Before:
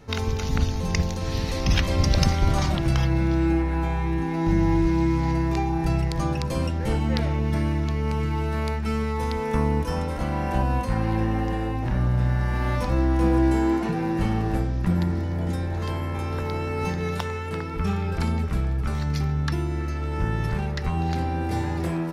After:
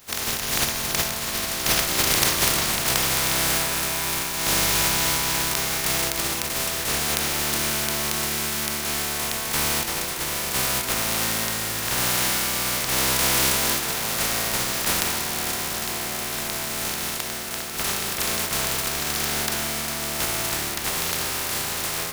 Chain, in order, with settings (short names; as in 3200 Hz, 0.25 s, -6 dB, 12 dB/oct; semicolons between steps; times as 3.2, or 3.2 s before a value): spectral contrast lowered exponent 0.14; on a send: reverb RT60 4.7 s, pre-delay 4 ms, DRR 6 dB; on the sum: gain -1.5 dB